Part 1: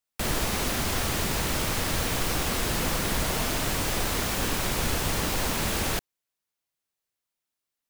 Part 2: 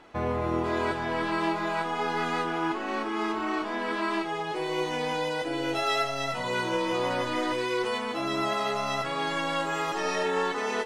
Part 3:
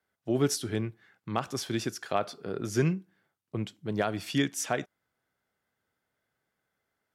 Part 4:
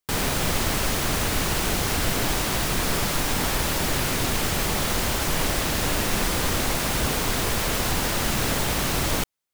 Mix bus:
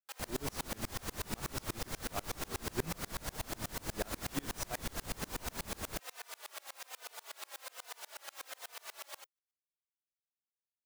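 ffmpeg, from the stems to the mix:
ffmpeg -i stem1.wav -i stem2.wav -i stem3.wav -i stem4.wav -filter_complex "[0:a]equalizer=frequency=2800:width=1.5:gain=-5.5,alimiter=level_in=2dB:limit=-24dB:level=0:latency=1:release=127,volume=-2dB,volume=1.5dB[link_01];[2:a]volume=-7.5dB[link_02];[3:a]highpass=frequency=570:width=0.5412,highpass=frequency=570:width=1.3066,alimiter=limit=-24dB:level=0:latency=1:release=151,asplit=2[link_03][link_04];[link_04]adelay=3.2,afreqshift=-1.2[link_05];[link_03][link_05]amix=inputs=2:normalize=1,volume=-4dB[link_06];[link_01][link_02][link_06]amix=inputs=3:normalize=0,aeval=exprs='val(0)*pow(10,-31*if(lt(mod(-8.2*n/s,1),2*abs(-8.2)/1000),1-mod(-8.2*n/s,1)/(2*abs(-8.2)/1000),(mod(-8.2*n/s,1)-2*abs(-8.2)/1000)/(1-2*abs(-8.2)/1000))/20)':channel_layout=same" out.wav

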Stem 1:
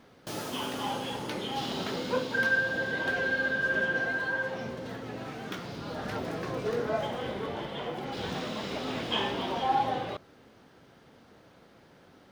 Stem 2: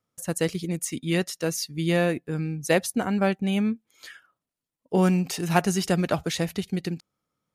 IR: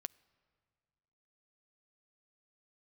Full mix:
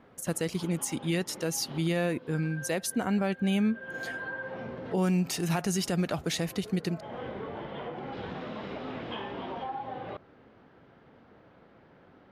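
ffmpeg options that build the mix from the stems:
-filter_complex "[0:a]lowpass=2300,acompressor=threshold=-34dB:ratio=6,volume=0dB[link_01];[1:a]volume=-1.5dB,asplit=2[link_02][link_03];[link_03]apad=whole_len=542912[link_04];[link_01][link_04]sidechaincompress=threshold=-35dB:ratio=12:attack=8.7:release=293[link_05];[link_05][link_02]amix=inputs=2:normalize=0,alimiter=limit=-19.5dB:level=0:latency=1:release=57"

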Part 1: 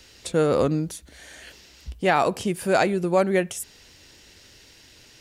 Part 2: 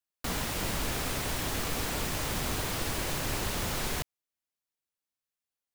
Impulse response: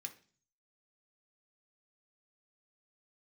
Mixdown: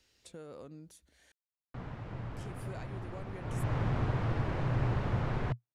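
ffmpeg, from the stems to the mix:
-filter_complex "[0:a]acompressor=threshold=-26dB:ratio=4,volume=-20dB,asplit=3[link_01][link_02][link_03];[link_01]atrim=end=1.32,asetpts=PTS-STARTPTS,afade=type=out:start_time=1.316:duration=0.004:curve=hsin[link_04];[link_02]atrim=start=1.32:end=2.35,asetpts=PTS-STARTPTS,volume=0[link_05];[link_03]atrim=start=2.35,asetpts=PTS-STARTPTS,afade=type=in:duration=0.004:curve=hsin[link_06];[link_04][link_05][link_06]concat=n=3:v=0:a=1[link_07];[1:a]lowpass=1500,equalizer=frequency=120:width_type=o:width=0.53:gain=14.5,adelay=1500,volume=-1dB,afade=type=in:start_time=3.4:duration=0.32:silence=0.316228[link_08];[link_07][link_08]amix=inputs=2:normalize=0"

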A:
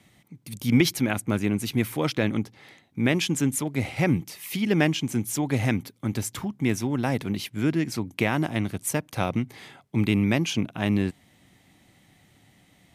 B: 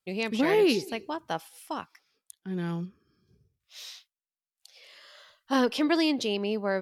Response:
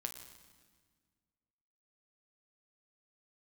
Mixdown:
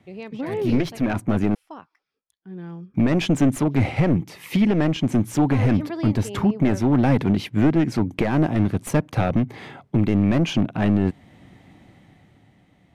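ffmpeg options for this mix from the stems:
-filter_complex "[0:a]aeval=exprs='clip(val(0),-1,0.0631)':channel_layout=same,dynaudnorm=framelen=160:gausssize=13:maxgain=9dB,volume=2.5dB,asplit=3[link_01][link_02][link_03];[link_01]atrim=end=1.55,asetpts=PTS-STARTPTS,afade=type=out:start_time=1.546:duration=0.004:curve=hsin[link_04];[link_02]atrim=start=1.55:end=2.94,asetpts=PTS-STARTPTS,volume=0[link_05];[link_03]atrim=start=2.94,asetpts=PTS-STARTPTS,afade=type=in:duration=0.004:curve=hsin[link_06];[link_04][link_05][link_06]concat=n=3:v=0:a=1[link_07];[1:a]volume=-3.5dB[link_08];[link_07][link_08]amix=inputs=2:normalize=0,lowpass=frequency=1200:poles=1,alimiter=limit=-9.5dB:level=0:latency=1:release=303"

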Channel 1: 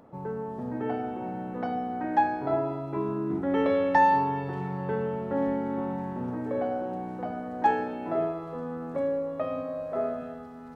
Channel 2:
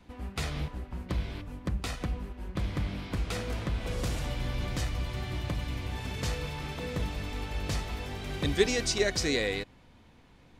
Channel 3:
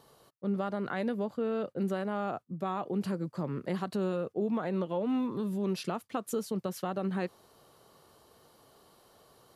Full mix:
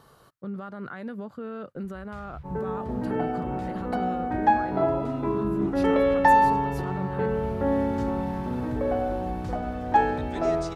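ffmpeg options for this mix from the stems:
ffmpeg -i stem1.wav -i stem2.wav -i stem3.wav -filter_complex "[0:a]agate=range=-33dB:threshold=-35dB:ratio=3:detection=peak,adelay=2300,volume=3dB[link_01];[1:a]lowshelf=frequency=170:width_type=q:width=1.5:gain=13.5,acrusher=bits=10:mix=0:aa=0.000001,adelay=1750,volume=-14dB[link_02];[2:a]lowshelf=frequency=190:gain=11,volume=0.5dB[link_03];[link_02][link_03]amix=inputs=2:normalize=0,equalizer=frequency=1400:width_type=o:width=0.91:gain=9.5,alimiter=level_in=3.5dB:limit=-24dB:level=0:latency=1:release=261,volume=-3.5dB,volume=0dB[link_04];[link_01][link_04]amix=inputs=2:normalize=0" out.wav

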